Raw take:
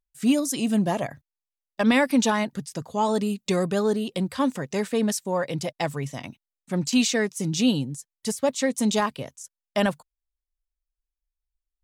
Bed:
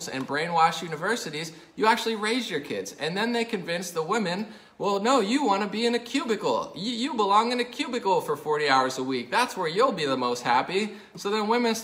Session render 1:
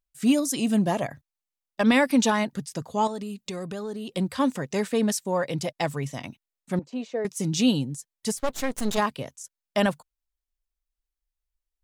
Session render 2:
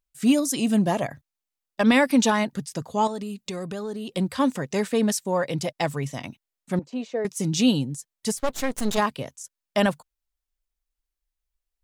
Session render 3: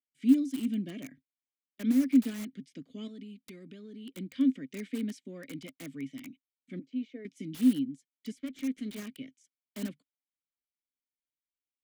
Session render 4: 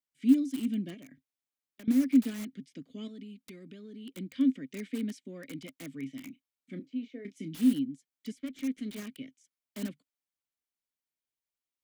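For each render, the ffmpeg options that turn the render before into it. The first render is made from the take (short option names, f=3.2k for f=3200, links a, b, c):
-filter_complex "[0:a]asettb=1/sr,asplit=3[a][b][c];[a]atrim=end=3.074[d];[b]atrim=start=3.07:end=4.17,asetpts=PTS-STARTPTS,afade=t=in:d=0.004:c=qsin,afade=t=out:st=1.096:d=0.004:c=qsin,acompressor=threshold=-31dB:ratio=5:attack=3.2:release=140:knee=1:detection=peak[e];[c]atrim=start=4.166[f];[d][e]acrossfade=d=0.004:c1=hsin:c2=qsin[g];[g][f]acrossfade=d=0.004:c1=qsin:c2=hsin,asettb=1/sr,asplit=3[h][i][j];[h]atrim=end=6.794[k];[i]atrim=start=6.79:end=7.25,asetpts=PTS-STARTPTS,afade=t=in:d=0.004:c=qsin,afade=t=out:st=0.456:d=0.004:c=qsin,bandpass=f=550:t=q:w=2[l];[j]atrim=start=7.246[m];[k][l]acrossfade=d=0.004:c1=hsin:c2=qsin[n];[n][m]acrossfade=d=0.004:c1=qsin:c2=hsin,asplit=3[o][p][q];[o]afade=t=out:st=8.37:d=0.02[r];[p]aeval=exprs='max(val(0),0)':c=same,afade=t=in:st=8.37:d=0.02,afade=t=out:st=8.97:d=0.02[s];[q]afade=t=in:st=8.97:d=0.02[t];[r][s][t]amix=inputs=3:normalize=0"
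-af "volume=1.5dB"
-filter_complex "[0:a]asplit=3[a][b][c];[a]bandpass=f=270:t=q:w=8,volume=0dB[d];[b]bandpass=f=2.29k:t=q:w=8,volume=-6dB[e];[c]bandpass=f=3.01k:t=q:w=8,volume=-9dB[f];[d][e][f]amix=inputs=3:normalize=0,acrossover=split=200|1200[g][h][i];[i]aeval=exprs='(mod(119*val(0)+1,2)-1)/119':c=same[j];[g][h][j]amix=inputs=3:normalize=0"
-filter_complex "[0:a]asettb=1/sr,asplit=3[a][b][c];[a]atrim=end=0.944[d];[b]atrim=start=0.94:end=1.88,asetpts=PTS-STARTPTS,afade=t=in:d=0.004:c=qsin,afade=t=out:st=0.936:d=0.004:c=qsin,acompressor=threshold=-46dB:ratio=10:attack=3.2:release=140:knee=1:detection=peak[e];[c]atrim=start=1.876[f];[d][e]acrossfade=d=0.004:c1=hsin:c2=qsin[g];[g][f]acrossfade=d=0.004:c1=qsin:c2=hsin,asettb=1/sr,asplit=3[h][i][j];[h]atrim=end=5.964[k];[i]atrim=start=5.96:end=7.74,asetpts=PTS-STARTPTS,afade=t=in:d=0.004:c=qsin,afade=t=out:st=1.776:d=0.004:c=qsin,asplit=2[l][m];[m]adelay=30,volume=-11dB[n];[l][n]amix=inputs=2:normalize=0,atrim=end_sample=78498[o];[j]atrim=start=7.736[p];[k][o]acrossfade=d=0.004:c1=hsin:c2=qsin[q];[q][p]acrossfade=d=0.004:c1=qsin:c2=hsin"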